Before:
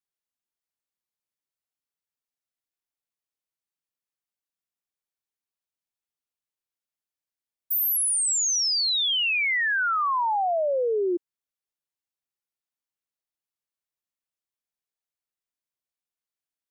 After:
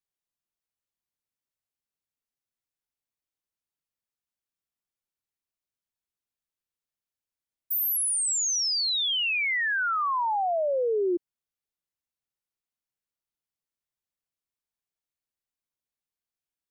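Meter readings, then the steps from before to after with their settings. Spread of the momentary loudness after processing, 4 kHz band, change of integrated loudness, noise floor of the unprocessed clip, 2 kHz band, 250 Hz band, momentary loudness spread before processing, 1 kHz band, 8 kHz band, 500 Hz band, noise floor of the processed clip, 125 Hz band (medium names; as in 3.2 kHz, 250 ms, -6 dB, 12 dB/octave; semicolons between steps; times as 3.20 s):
3 LU, -2.5 dB, -2.5 dB, under -85 dBFS, -2.5 dB, -0.5 dB, 5 LU, -2.0 dB, -2.5 dB, -1.5 dB, under -85 dBFS, no reading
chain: bass shelf 210 Hz +7.5 dB; trim -2.5 dB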